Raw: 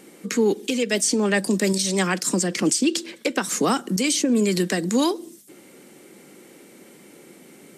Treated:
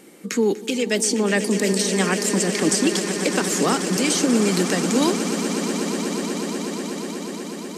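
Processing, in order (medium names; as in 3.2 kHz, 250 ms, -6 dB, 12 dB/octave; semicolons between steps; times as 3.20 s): echo with a slow build-up 122 ms, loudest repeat 8, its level -13.5 dB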